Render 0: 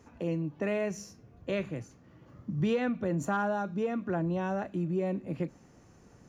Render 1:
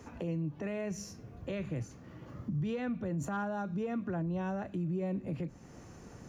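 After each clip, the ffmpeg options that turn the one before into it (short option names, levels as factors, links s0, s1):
-filter_complex "[0:a]acrossover=split=150[s0][s1];[s1]acompressor=threshold=0.00447:ratio=2[s2];[s0][s2]amix=inputs=2:normalize=0,alimiter=level_in=3.35:limit=0.0631:level=0:latency=1:release=81,volume=0.299,volume=2.11"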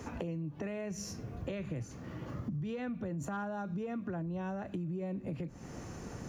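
-af "acompressor=threshold=0.00794:ratio=6,volume=2.11"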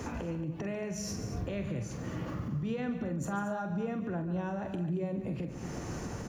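-filter_complex "[0:a]alimiter=level_in=3.35:limit=0.0631:level=0:latency=1:release=143,volume=0.299,asplit=2[s0][s1];[s1]adelay=45,volume=0.335[s2];[s0][s2]amix=inputs=2:normalize=0,aecho=1:1:142.9|227.4:0.251|0.251,volume=2"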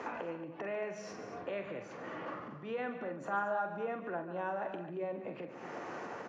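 -af "highpass=530,lowpass=2200,volume=1.58"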